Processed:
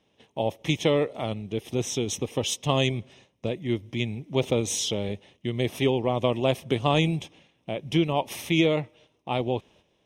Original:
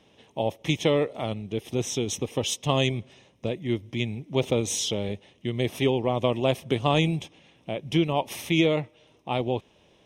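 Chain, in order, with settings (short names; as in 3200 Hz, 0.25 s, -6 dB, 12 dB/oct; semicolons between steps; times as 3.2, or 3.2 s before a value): gate -54 dBFS, range -9 dB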